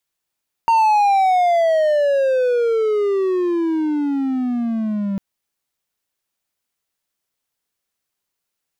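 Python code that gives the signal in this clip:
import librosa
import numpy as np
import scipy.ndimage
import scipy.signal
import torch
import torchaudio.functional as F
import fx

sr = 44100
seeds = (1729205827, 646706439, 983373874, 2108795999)

y = fx.riser_tone(sr, length_s=4.5, level_db=-9.0, wave='triangle', hz=924.0, rise_st=-27.0, swell_db=-8)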